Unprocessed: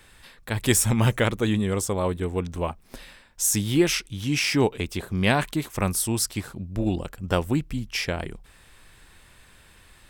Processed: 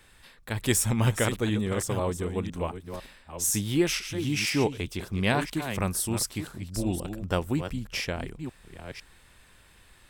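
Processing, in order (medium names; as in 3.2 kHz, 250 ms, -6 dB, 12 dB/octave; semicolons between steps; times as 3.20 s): chunks repeated in reverse 500 ms, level -9 dB; trim -4 dB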